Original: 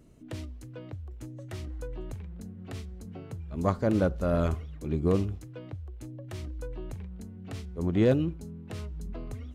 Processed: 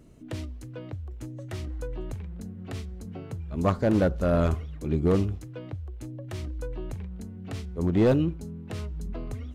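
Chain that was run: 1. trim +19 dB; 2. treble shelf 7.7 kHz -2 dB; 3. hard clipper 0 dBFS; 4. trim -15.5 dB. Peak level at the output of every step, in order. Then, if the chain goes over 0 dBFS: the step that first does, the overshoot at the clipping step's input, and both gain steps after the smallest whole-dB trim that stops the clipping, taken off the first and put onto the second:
+6.0 dBFS, +6.0 dBFS, 0.0 dBFS, -15.5 dBFS; step 1, 6.0 dB; step 1 +13 dB, step 4 -9.5 dB

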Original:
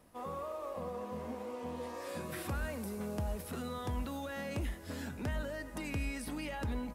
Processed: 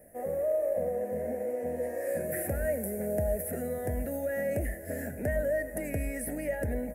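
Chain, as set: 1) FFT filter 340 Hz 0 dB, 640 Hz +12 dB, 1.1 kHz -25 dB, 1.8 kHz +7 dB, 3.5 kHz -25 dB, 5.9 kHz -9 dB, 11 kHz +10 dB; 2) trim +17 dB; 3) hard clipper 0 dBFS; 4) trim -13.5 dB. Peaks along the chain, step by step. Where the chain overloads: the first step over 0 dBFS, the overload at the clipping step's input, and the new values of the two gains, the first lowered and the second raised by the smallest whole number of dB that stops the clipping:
-21.0 dBFS, -4.0 dBFS, -4.0 dBFS, -17.5 dBFS; nothing clips

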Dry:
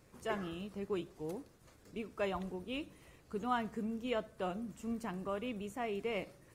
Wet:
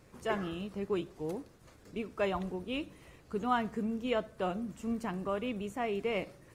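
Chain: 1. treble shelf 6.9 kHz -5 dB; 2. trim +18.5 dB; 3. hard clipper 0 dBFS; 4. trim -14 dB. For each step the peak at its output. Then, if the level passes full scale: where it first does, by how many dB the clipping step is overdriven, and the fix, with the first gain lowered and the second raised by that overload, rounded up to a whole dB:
-22.5 dBFS, -4.0 dBFS, -4.0 dBFS, -18.0 dBFS; nothing clips

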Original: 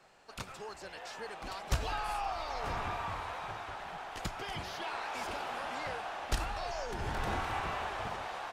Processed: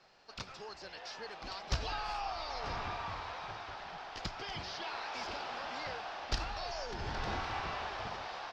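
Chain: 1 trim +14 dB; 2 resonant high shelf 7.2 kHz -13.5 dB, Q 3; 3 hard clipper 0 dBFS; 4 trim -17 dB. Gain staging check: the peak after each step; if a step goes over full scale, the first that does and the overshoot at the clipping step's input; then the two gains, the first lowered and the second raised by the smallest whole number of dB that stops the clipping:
-5.5 dBFS, -2.0 dBFS, -2.0 dBFS, -19.0 dBFS; nothing clips

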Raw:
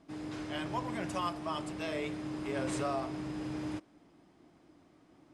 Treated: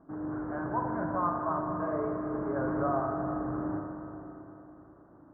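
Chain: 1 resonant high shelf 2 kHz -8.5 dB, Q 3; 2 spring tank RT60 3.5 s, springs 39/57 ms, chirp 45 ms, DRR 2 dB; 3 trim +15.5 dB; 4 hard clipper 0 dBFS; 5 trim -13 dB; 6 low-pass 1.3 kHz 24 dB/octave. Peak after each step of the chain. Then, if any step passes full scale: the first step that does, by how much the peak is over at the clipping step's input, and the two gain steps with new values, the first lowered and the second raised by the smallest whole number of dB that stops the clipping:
-20.5 dBFS, -19.5 dBFS, -4.0 dBFS, -4.0 dBFS, -17.0 dBFS, -18.0 dBFS; nothing clips

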